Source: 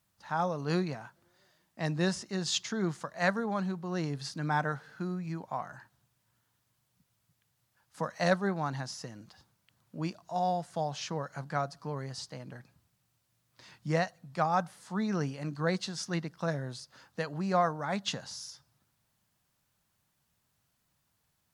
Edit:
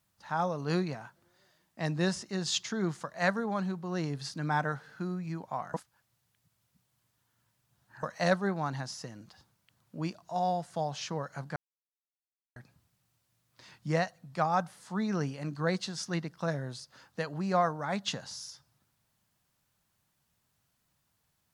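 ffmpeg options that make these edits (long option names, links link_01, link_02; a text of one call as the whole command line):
ffmpeg -i in.wav -filter_complex "[0:a]asplit=5[link_01][link_02][link_03][link_04][link_05];[link_01]atrim=end=5.742[link_06];[link_02]atrim=start=5.738:end=8.032,asetpts=PTS-STARTPTS,areverse[link_07];[link_03]atrim=start=8.028:end=11.56,asetpts=PTS-STARTPTS,afade=type=out:start_time=3.528:duration=0.004:curve=hsin[link_08];[link_04]atrim=start=11.56:end=12.56,asetpts=PTS-STARTPTS,volume=0[link_09];[link_05]atrim=start=12.56,asetpts=PTS-STARTPTS,afade=type=in:duration=0.004:curve=hsin[link_10];[link_06][link_07]acrossfade=duration=0.004:curve1=hsin:curve2=hsin[link_11];[link_08][link_09][link_10]concat=n=3:v=0:a=1[link_12];[link_11][link_12]acrossfade=duration=0.004:curve1=hsin:curve2=hsin" out.wav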